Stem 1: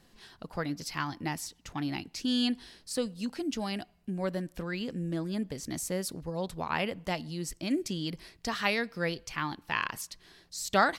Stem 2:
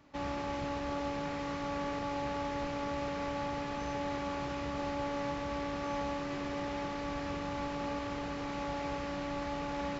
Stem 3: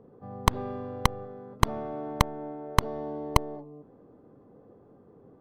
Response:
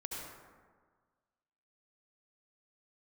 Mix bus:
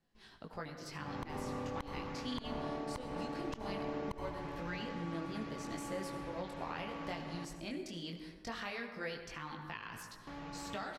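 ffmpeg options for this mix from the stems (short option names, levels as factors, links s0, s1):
-filter_complex "[0:a]agate=range=0.224:threshold=0.00158:ratio=16:detection=peak,acrossover=split=500|3000[s0][s1][s2];[s0]acompressor=threshold=0.00891:ratio=4[s3];[s1]acompressor=threshold=0.02:ratio=4[s4];[s2]acompressor=threshold=0.01:ratio=4[s5];[s3][s4][s5]amix=inputs=3:normalize=0,flanger=delay=18:depth=6.1:speed=0.2,volume=0.596,asplit=2[s6][s7];[s7]volume=0.708[s8];[1:a]aecho=1:1:6.3:0.68,adelay=850,volume=0.335,asplit=3[s9][s10][s11];[s9]atrim=end=7.45,asetpts=PTS-STARTPTS,afade=t=out:st=7.446:d=0.004:c=hsin[s12];[s10]atrim=start=7.45:end=10.27,asetpts=PTS-STARTPTS,volume=0[s13];[s11]atrim=start=10.27,asetpts=PTS-STARTPTS,afade=t=in:d=0.004:c=hsin[s14];[s12][s13][s14]concat=n=3:v=0:a=1,asplit=2[s15][s16];[s16]volume=0.398[s17];[2:a]tremolo=f=36:d=0.571,adelay=750,volume=0.631,asplit=2[s18][s19];[s19]volume=0.266[s20];[3:a]atrim=start_sample=2205[s21];[s8][s20]amix=inputs=2:normalize=0[s22];[s22][s21]afir=irnorm=-1:irlink=0[s23];[s17]aecho=0:1:152:1[s24];[s6][s15][s18][s23][s24]amix=inputs=5:normalize=0,highshelf=f=5500:g=-9,alimiter=level_in=1.88:limit=0.0631:level=0:latency=1:release=215,volume=0.531"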